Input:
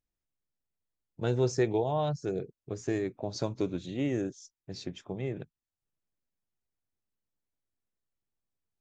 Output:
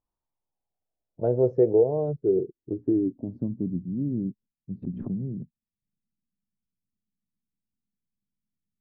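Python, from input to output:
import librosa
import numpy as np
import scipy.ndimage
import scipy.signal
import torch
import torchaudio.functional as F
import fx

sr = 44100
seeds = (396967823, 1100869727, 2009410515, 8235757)

y = fx.wiener(x, sr, points=9)
y = fx.filter_sweep_lowpass(y, sr, from_hz=1000.0, to_hz=210.0, start_s=0.11, end_s=3.74, q=4.5)
y = fx.pre_swell(y, sr, db_per_s=49.0, at=(4.82, 5.27), fade=0.02)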